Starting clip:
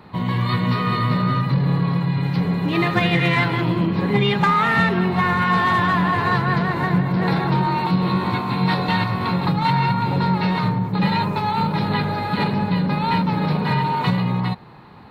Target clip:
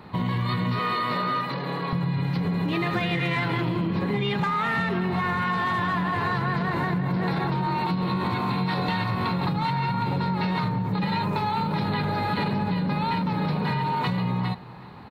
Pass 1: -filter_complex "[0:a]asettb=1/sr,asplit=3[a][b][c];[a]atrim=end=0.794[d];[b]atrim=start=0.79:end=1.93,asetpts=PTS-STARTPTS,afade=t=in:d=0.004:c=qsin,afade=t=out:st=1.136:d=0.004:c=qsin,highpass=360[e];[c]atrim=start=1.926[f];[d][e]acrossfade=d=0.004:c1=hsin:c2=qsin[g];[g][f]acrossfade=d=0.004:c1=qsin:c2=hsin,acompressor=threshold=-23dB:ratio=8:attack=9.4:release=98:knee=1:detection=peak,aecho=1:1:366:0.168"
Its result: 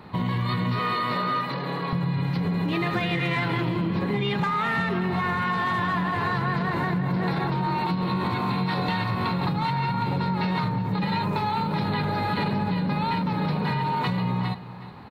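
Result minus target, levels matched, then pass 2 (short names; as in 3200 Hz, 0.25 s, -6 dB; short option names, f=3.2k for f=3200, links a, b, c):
echo-to-direct +6 dB
-filter_complex "[0:a]asettb=1/sr,asplit=3[a][b][c];[a]atrim=end=0.794[d];[b]atrim=start=0.79:end=1.93,asetpts=PTS-STARTPTS,afade=t=in:d=0.004:c=qsin,afade=t=out:st=1.136:d=0.004:c=qsin,highpass=360[e];[c]atrim=start=1.926[f];[d][e]acrossfade=d=0.004:c1=hsin:c2=qsin[g];[g][f]acrossfade=d=0.004:c1=qsin:c2=hsin,acompressor=threshold=-23dB:ratio=8:attack=9.4:release=98:knee=1:detection=peak,aecho=1:1:366:0.0841"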